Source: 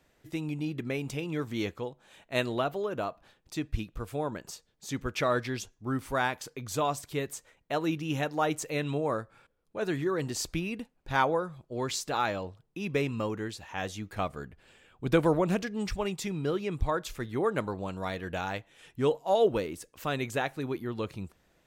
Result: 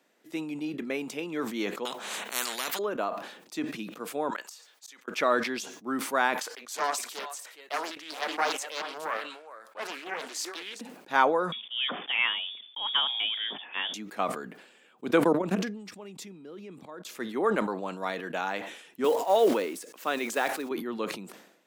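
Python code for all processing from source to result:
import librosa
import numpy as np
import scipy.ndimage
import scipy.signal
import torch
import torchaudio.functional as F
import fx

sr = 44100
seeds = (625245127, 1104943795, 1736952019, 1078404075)

y = fx.chain(x, sr, fx.peak_eq(hz=310.0, db=-13.0, octaves=0.47),
    fx.spectral_comp(ratio=10.0), at=(1.85, 2.79))
y = fx.chain(y, sr, fx.highpass(hz=960.0, slope=12),
    fx.gate_flip(shuts_db=-34.0, range_db=-26), at=(4.3, 5.08))
y = fx.chain(y, sr, fx.highpass(hz=750.0, slope=12),
    fx.echo_single(ms=416, db=-12.0),
    fx.doppler_dist(depth_ms=0.63), at=(6.42, 10.81))
y = fx.chain(y, sr, fx.block_float(bits=5),
    fx.freq_invert(carrier_hz=3500), at=(11.52, 13.94))
y = fx.chain(y, sr, fx.low_shelf(hz=270.0, db=8.5),
    fx.level_steps(step_db=21), at=(15.23, 17.09))
y = fx.chain(y, sr, fx.block_float(bits=5),
    fx.highpass(hz=220.0, slope=12), at=(19.04, 20.71))
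y = scipy.signal.sosfilt(scipy.signal.butter(6, 200.0, 'highpass', fs=sr, output='sos'), y)
y = fx.dynamic_eq(y, sr, hz=1200.0, q=0.72, threshold_db=-41.0, ratio=4.0, max_db=4)
y = fx.sustainer(y, sr, db_per_s=71.0)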